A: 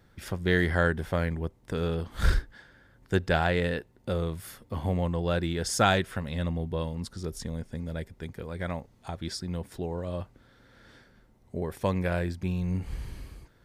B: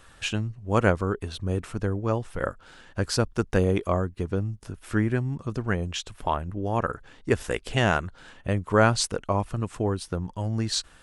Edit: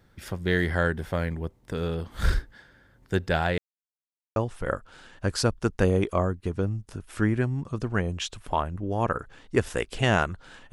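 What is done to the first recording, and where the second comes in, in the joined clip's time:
A
3.58–4.36 mute
4.36 switch to B from 2.1 s

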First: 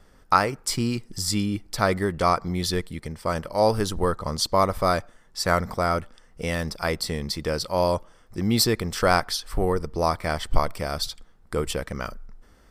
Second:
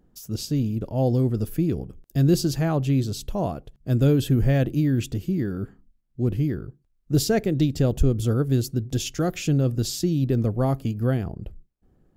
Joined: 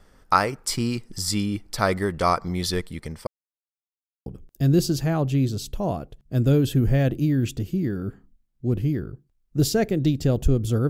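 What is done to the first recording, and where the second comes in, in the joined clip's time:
first
3.27–4.26 mute
4.26 switch to second from 1.81 s

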